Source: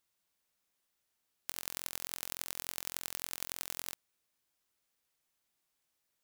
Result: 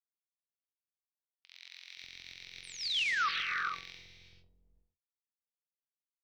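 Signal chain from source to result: short-time spectra conjugated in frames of 137 ms; bands offset in time highs, lows 520 ms, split 780 Hz; harmony voices -12 st -18 dB; high-order bell 3.4 kHz +14 dB; painted sound fall, 2.63–3.29 s, 1.1–9.8 kHz -26 dBFS; distance through air 240 m; gated-style reverb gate 490 ms rising, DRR 3 dB; peak limiter -26.5 dBFS, peak gain reduction 9.5 dB; de-hum 191.4 Hz, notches 27; three bands expanded up and down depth 100%; trim -2.5 dB

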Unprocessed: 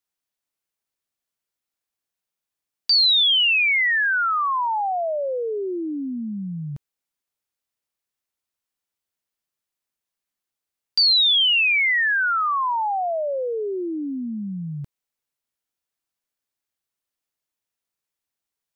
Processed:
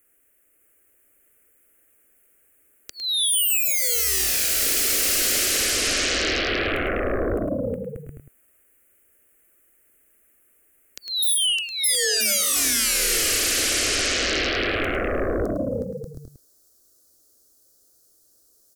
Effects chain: Butterworth band-stop 4.6 kHz, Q 0.66, from 11.22 s 2.4 kHz; bouncing-ball echo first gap 610 ms, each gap 0.6×, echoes 5; sine folder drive 18 dB, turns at -18.5 dBFS; peaking EQ 3.6 kHz -5.5 dB 0.27 oct; echo from a far wall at 18 m, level -8 dB; peak limiter -18 dBFS, peak gain reduction 4 dB; static phaser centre 380 Hz, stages 4; trim +3.5 dB

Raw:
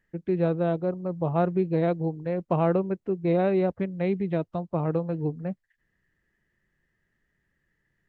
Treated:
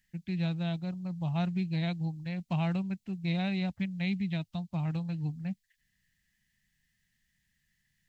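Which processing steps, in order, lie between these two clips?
FFT filter 210 Hz 0 dB, 440 Hz -24 dB, 780 Hz -6 dB, 1.2 kHz -11 dB, 2.3 kHz +6 dB, 4.1 kHz +13 dB; trim -2.5 dB

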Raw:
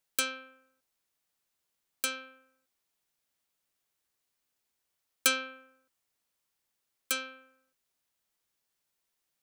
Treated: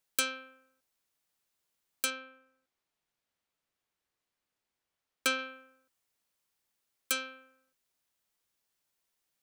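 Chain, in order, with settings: 2.10–5.39 s: treble shelf 5.3 kHz -11.5 dB

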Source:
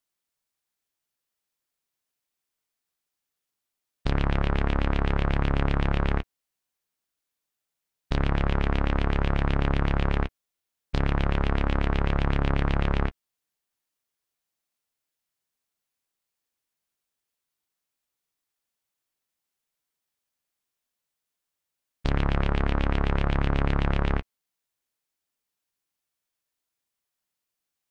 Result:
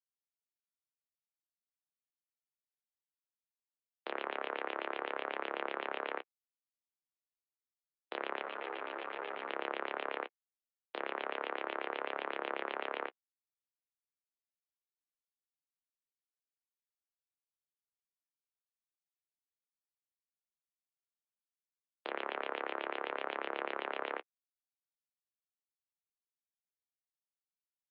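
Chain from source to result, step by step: expander -23 dBFS; mistuned SSB +64 Hz 340–3500 Hz; 8.43–9.50 s: three-phase chorus; trim -6.5 dB

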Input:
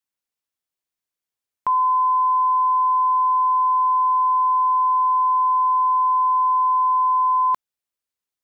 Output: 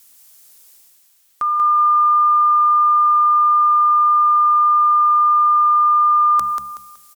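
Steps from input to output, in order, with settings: tone controls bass 0 dB, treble +15 dB; hum notches 60/120/180 Hz; reverse; upward compressor, threshold -26 dBFS; reverse; added noise blue -57 dBFS; tape speed +18%; feedback delay 187 ms, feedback 30%, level -5 dB

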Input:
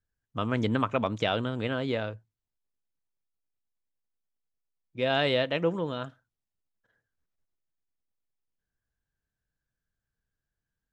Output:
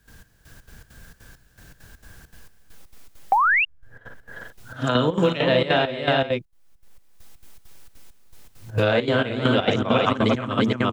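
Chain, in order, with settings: reverse the whole clip; on a send: multi-tap echo 40/57/169/352/441 ms -7/-6.5/-20/-4.5/-6 dB; on the sum: trance gate ".xx...xx.xx.xxx" 200 bpm -12 dB; painted sound rise, 3.32–3.65 s, 750–2900 Hz -32 dBFS; short-mantissa float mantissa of 8-bit; three bands compressed up and down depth 100%; trim +7.5 dB

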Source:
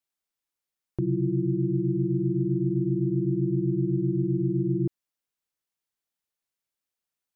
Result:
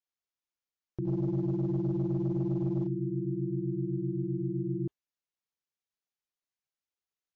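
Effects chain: 1.05–2.87 s: waveshaping leveller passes 1; trim -6.5 dB; MP3 32 kbps 16 kHz

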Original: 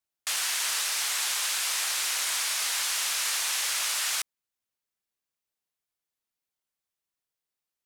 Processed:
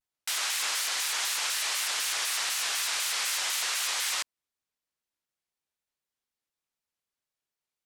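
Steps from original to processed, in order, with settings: treble shelf 11 kHz -7.5 dB; vibrato with a chosen wave square 4 Hz, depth 250 cents

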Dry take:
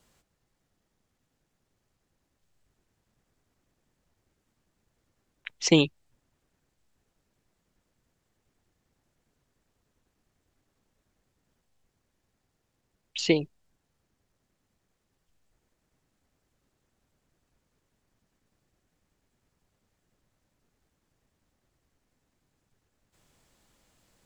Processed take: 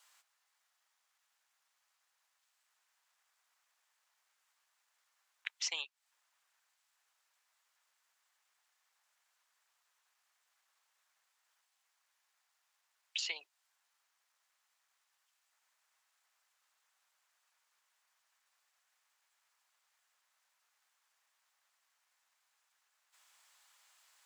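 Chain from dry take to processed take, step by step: high-pass 920 Hz 24 dB/octave; compression 8:1, threshold -38 dBFS, peak gain reduction 15.5 dB; trim +2.5 dB

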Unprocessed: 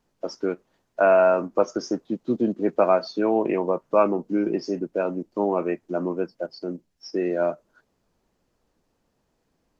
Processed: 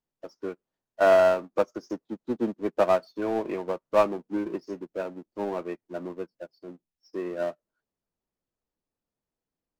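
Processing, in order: power-law waveshaper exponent 0.7; upward expansion 2.5:1, over -36 dBFS; trim -3 dB

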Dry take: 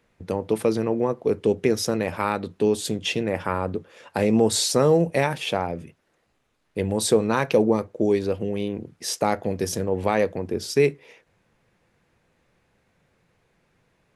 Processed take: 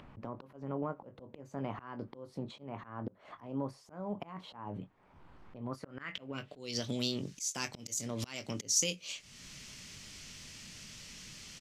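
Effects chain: pre-emphasis filter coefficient 0.8; doubling 26 ms -10.5 dB; compression 10:1, threshold -42 dBFS, peak gain reduction 19.5 dB; low-pass sweep 780 Hz -> 4.9 kHz, 6.82–8.44 s; wide varispeed 1.22×; slow attack 240 ms; upward compressor, threshold -54 dBFS; peaking EQ 660 Hz -14 dB 1.9 oct; trim +17.5 dB

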